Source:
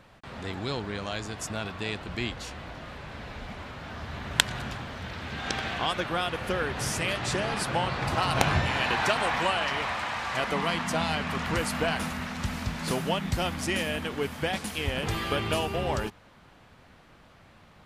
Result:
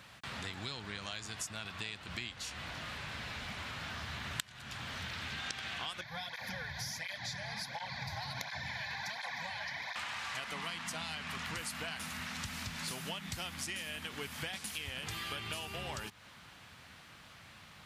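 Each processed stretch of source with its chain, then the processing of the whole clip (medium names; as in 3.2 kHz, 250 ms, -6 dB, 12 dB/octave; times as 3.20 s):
6.01–9.96 s: static phaser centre 1.9 kHz, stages 8 + cancelling through-zero flanger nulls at 1.4 Hz, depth 4.5 ms
whole clip: high-pass 79 Hz; amplifier tone stack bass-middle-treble 5-5-5; compression, threshold -52 dBFS; trim +13.5 dB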